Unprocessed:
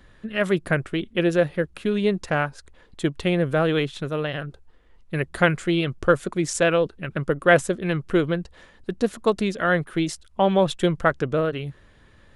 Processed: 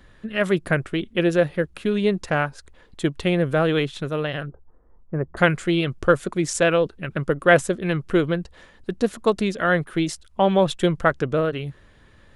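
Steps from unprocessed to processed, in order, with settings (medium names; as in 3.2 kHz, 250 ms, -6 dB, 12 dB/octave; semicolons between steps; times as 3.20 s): 4.48–5.37 s: low-pass 1.2 kHz 24 dB/octave; trim +1 dB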